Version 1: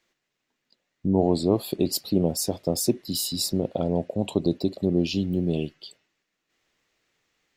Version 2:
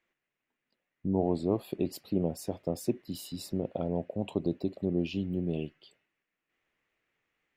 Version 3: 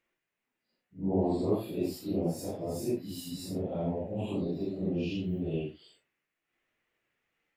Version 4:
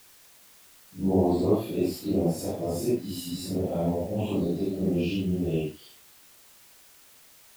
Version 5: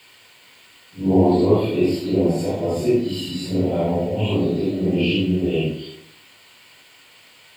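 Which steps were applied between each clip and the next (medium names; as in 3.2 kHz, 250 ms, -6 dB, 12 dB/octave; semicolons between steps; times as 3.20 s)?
resonant high shelf 3.3 kHz -9 dB, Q 1.5; trim -7 dB
phase randomisation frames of 200 ms
word length cut 10-bit, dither triangular; trim +5.5 dB
reverberation RT60 0.85 s, pre-delay 3 ms, DRR 5 dB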